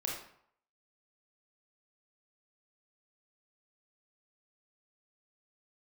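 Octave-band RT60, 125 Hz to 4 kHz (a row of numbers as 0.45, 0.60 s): 0.65, 0.55, 0.60, 0.70, 0.55, 0.45 s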